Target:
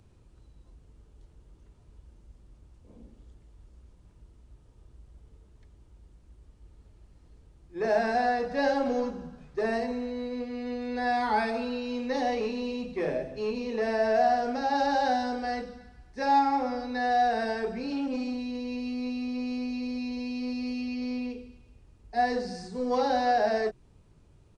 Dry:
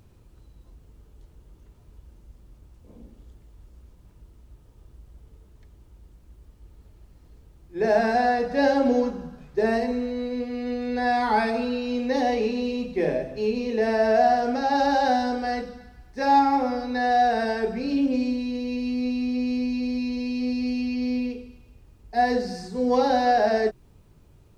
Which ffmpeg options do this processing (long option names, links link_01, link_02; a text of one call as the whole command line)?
ffmpeg -i in.wav -filter_complex "[0:a]acrossover=split=480|620[link_01][link_02][link_03];[link_01]asoftclip=type=tanh:threshold=-25.5dB[link_04];[link_04][link_02][link_03]amix=inputs=3:normalize=0,aresample=22050,aresample=44100,volume=-4dB" out.wav